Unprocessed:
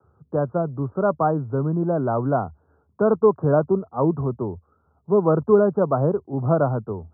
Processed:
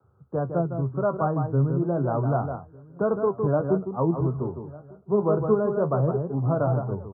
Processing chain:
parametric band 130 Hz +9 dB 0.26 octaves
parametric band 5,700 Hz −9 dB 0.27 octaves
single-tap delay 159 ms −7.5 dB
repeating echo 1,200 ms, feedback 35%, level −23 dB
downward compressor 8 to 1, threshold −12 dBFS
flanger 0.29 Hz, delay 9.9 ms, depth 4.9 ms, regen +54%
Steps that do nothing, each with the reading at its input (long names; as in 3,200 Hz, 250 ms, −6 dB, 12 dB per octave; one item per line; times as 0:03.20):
parametric band 5,700 Hz: nothing at its input above 1,400 Hz